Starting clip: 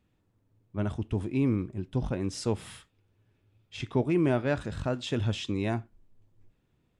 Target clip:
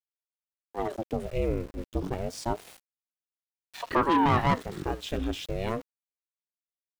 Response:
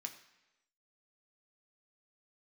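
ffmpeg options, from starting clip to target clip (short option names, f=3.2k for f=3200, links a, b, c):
-filter_complex "[0:a]asettb=1/sr,asplit=3[a][b][c];[a]atrim=end=3.874[d];[b]atrim=start=3.87:end=4.54,asetpts=PTS-STARTPTS,afade=t=in:d=0.004:c=qsin,afade=t=out:st=0.666:d=0.004:c=qsin,asplit=2[e][f];[f]highpass=f=720:p=1,volume=23dB,asoftclip=type=tanh:threshold=-13.5dB[g];[e][g]amix=inputs=2:normalize=0,lowpass=f=2.3k:p=1,volume=-6dB[h];[c]atrim=start=4.536[i];[d][h]acrossfade=d=0.004:c1=hsin:c2=qsin[j];[j][i]acrossfade=d=0.004:c1=qsin:c2=hsin,aeval=exprs='val(0)*gte(abs(val(0)),0.0075)':c=same,aeval=exprs='val(0)*sin(2*PI*540*n/s+540*0.7/0.29*sin(2*PI*0.29*n/s))':c=same,volume=1.5dB"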